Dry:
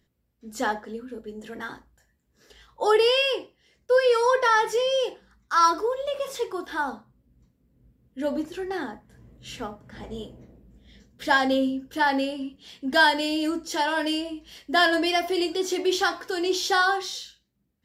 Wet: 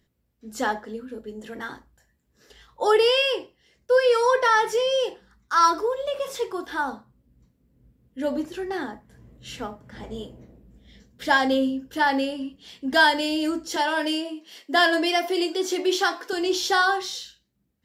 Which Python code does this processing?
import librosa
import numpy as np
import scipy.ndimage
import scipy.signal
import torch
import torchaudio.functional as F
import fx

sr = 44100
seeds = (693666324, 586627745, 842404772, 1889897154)

y = fx.highpass(x, sr, hz=240.0, slope=24, at=(13.76, 16.33))
y = y * 10.0 ** (1.0 / 20.0)